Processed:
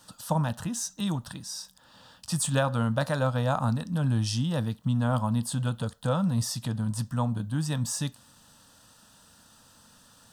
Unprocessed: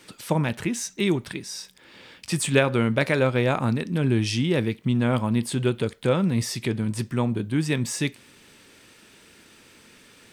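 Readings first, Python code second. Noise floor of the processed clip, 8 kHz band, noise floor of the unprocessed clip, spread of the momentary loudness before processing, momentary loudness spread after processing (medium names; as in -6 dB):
-58 dBFS, -1.0 dB, -53 dBFS, 7 LU, 7 LU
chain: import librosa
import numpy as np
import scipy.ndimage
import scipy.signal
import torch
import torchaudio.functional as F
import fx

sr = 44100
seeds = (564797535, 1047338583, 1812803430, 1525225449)

y = fx.fixed_phaser(x, sr, hz=920.0, stages=4)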